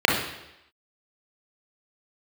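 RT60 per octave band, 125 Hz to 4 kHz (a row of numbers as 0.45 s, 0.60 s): 0.75 s, 0.85 s, 0.90 s, 0.85 s, 0.90 s, 0.90 s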